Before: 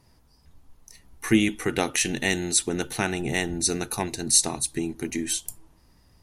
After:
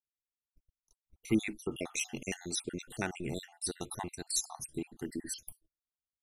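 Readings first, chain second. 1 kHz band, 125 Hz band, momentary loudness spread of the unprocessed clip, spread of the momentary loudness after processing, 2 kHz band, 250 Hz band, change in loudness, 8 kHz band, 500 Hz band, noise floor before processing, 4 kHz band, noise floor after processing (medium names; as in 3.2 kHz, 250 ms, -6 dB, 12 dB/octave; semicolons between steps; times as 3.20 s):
-12.5 dB, -11.0 dB, 10 LU, 9 LU, -13.5 dB, -10.5 dB, -12.5 dB, -13.5 dB, -11.5 dB, -60 dBFS, -13.0 dB, under -85 dBFS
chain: random holes in the spectrogram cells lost 60%; gate -47 dBFS, range -40 dB; trim -8.5 dB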